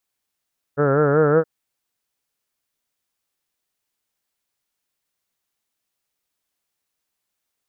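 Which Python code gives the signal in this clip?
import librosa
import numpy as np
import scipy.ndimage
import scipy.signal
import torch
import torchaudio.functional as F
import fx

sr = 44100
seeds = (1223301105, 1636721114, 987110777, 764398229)

y = fx.vowel(sr, seeds[0], length_s=0.67, word='heard', hz=139.0, glide_st=2.0, vibrato_hz=5.3, vibrato_st=0.9)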